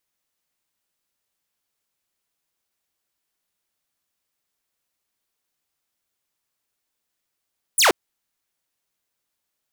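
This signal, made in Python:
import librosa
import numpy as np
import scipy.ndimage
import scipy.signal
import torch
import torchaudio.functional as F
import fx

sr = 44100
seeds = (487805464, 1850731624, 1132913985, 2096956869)

y = fx.laser_zap(sr, level_db=-10.0, start_hz=11000.0, end_hz=300.0, length_s=0.13, wave='saw')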